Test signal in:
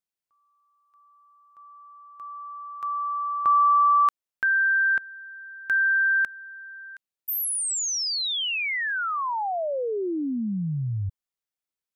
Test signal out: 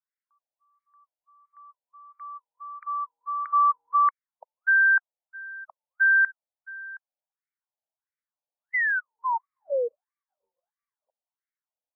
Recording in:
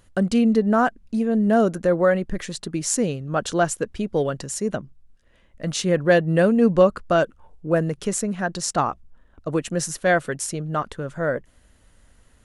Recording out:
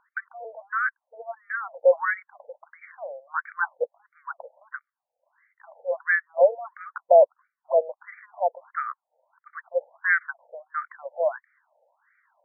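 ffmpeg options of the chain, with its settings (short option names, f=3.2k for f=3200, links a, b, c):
-af "equalizer=f=400:t=o:w=0.33:g=-9,equalizer=f=630:t=o:w=0.33:g=3,equalizer=f=1.25k:t=o:w=0.33:g=-7,afftfilt=real='re*between(b*sr/1024,630*pow(1700/630,0.5+0.5*sin(2*PI*1.5*pts/sr))/1.41,630*pow(1700/630,0.5+0.5*sin(2*PI*1.5*pts/sr))*1.41)':imag='im*between(b*sr/1024,630*pow(1700/630,0.5+0.5*sin(2*PI*1.5*pts/sr))/1.41,630*pow(1700/630,0.5+0.5*sin(2*PI*1.5*pts/sr))*1.41)':win_size=1024:overlap=0.75,volume=4.5dB"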